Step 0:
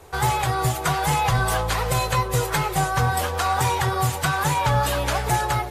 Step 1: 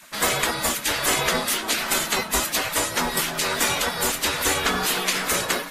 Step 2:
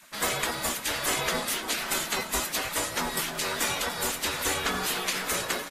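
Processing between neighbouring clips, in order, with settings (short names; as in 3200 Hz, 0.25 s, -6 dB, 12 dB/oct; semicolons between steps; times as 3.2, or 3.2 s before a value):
spectral gate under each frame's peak -15 dB weak; gain +7 dB
feedback echo 0.292 s, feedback 46%, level -15 dB; gain -6 dB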